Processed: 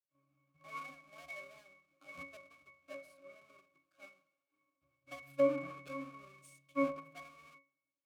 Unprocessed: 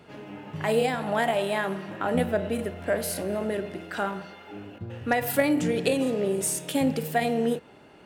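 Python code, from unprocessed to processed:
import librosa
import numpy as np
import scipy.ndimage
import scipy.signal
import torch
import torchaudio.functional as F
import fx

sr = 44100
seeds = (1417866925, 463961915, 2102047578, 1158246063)

y = fx.halfwave_hold(x, sr)
y = np.diff(y, prepend=0.0)
y = fx.transient(y, sr, attack_db=2, sustain_db=-3)
y = fx.octave_resonator(y, sr, note='C#', decay_s=0.4)
y = fx.band_widen(y, sr, depth_pct=100)
y = F.gain(torch.from_numpy(y), 11.0).numpy()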